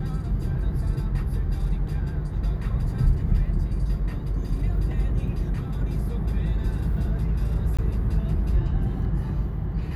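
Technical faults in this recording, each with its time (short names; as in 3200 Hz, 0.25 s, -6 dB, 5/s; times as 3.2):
7.77–7.79 gap 16 ms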